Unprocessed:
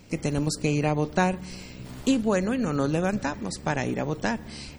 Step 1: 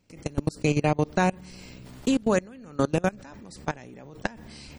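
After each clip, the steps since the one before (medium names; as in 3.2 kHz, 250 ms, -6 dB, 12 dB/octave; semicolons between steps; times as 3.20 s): level held to a coarse grid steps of 24 dB; trim +3.5 dB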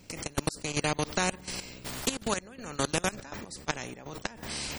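treble shelf 5.2 kHz +5.5 dB; trance gate "xx.x..xxxxx.x.." 122 bpm -12 dB; spectrum-flattening compressor 2:1; trim -1.5 dB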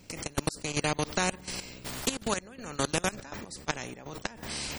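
no audible change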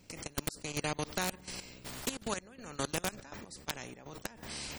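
integer overflow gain 14 dB; trim -6 dB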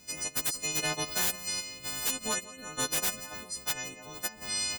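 partials quantised in pitch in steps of 3 st; feedback delay 172 ms, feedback 40%, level -19.5 dB; wavefolder -23.5 dBFS; trim +1 dB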